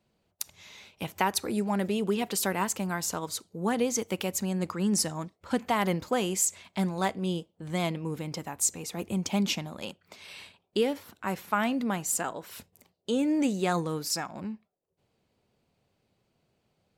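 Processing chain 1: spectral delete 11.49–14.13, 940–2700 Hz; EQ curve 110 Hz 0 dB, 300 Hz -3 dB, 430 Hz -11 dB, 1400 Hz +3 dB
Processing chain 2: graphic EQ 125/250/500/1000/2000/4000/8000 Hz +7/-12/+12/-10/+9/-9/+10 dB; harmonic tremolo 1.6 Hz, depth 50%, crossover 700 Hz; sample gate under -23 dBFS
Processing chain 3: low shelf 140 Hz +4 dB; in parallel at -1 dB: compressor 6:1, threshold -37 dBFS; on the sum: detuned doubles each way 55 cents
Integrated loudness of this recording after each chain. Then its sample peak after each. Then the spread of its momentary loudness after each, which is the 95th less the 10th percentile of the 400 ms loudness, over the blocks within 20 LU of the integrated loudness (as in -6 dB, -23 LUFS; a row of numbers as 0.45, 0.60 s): -30.0, -30.0, -31.5 LUFS; -9.0, -7.5, -15.0 dBFS; 15, 17, 12 LU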